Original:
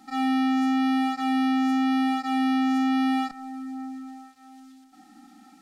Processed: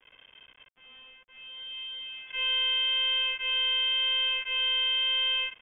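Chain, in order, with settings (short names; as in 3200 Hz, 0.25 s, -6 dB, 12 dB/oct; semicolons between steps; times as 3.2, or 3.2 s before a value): whole clip reversed; bit-crush 8-bit; inverted band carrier 3400 Hz; gain -4.5 dB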